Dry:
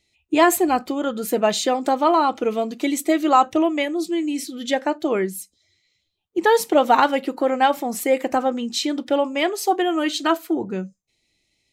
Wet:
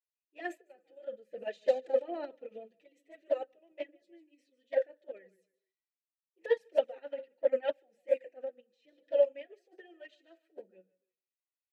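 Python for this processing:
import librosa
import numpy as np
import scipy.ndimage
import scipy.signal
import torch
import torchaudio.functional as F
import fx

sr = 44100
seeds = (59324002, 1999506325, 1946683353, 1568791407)

y = fx.low_shelf(x, sr, hz=200.0, db=9.5, at=(1.3, 4.02))
y = fx.transient(y, sr, attack_db=-7, sustain_db=9)
y = fx.vowel_filter(y, sr, vowel='e')
y = fx.echo_feedback(y, sr, ms=146, feedback_pct=32, wet_db=-14.0)
y = fx.tremolo_random(y, sr, seeds[0], hz=3.5, depth_pct=55)
y = fx.hum_notches(y, sr, base_hz=60, count=10)
y = fx.env_flanger(y, sr, rest_ms=8.6, full_db=-17.5)
y = fx.upward_expand(y, sr, threshold_db=-44.0, expansion=2.5)
y = F.gain(torch.from_numpy(y), 6.0).numpy()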